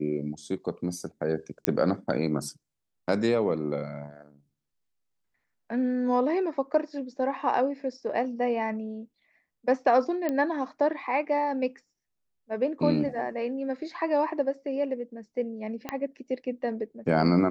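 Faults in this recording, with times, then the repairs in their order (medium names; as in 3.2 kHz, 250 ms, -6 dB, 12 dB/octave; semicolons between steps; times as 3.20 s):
1.65 s: pop -6 dBFS
10.29 s: pop -16 dBFS
15.89 s: pop -16 dBFS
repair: de-click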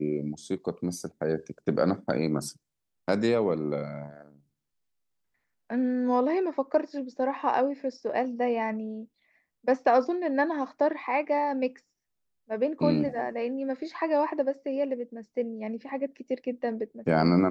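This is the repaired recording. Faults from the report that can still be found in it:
15.89 s: pop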